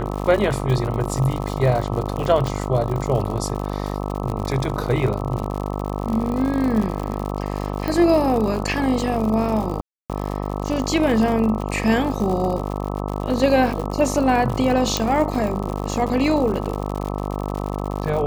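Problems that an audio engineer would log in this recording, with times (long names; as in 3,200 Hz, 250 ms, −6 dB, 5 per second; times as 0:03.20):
mains buzz 50 Hz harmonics 26 −26 dBFS
surface crackle 97 per second −26 dBFS
0:02.47: click
0:07.88: click
0:09.81–0:10.10: drop-out 287 ms
0:14.97: click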